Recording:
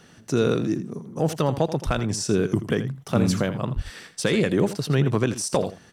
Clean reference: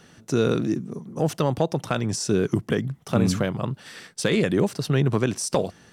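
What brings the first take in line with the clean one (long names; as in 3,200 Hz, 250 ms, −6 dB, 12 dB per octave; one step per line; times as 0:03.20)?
high-pass at the plosives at 0:01.85/0:03.75
echo removal 82 ms −13 dB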